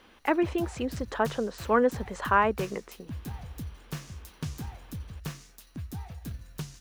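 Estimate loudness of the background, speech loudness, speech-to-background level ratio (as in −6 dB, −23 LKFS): −41.5 LKFS, −28.0 LKFS, 13.5 dB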